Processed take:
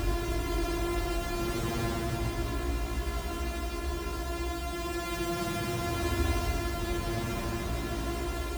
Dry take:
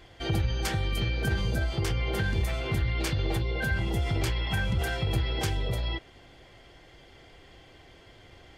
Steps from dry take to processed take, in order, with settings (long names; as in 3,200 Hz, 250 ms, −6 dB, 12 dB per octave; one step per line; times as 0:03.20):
samples sorted by size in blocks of 128 samples
extreme stretch with random phases 13×, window 0.10 s, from 0:03.24
level −4 dB